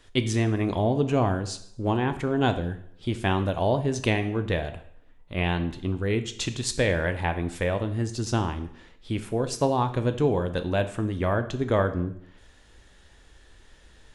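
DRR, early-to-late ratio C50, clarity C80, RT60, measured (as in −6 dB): 8.5 dB, 12.5 dB, 15.5 dB, 0.70 s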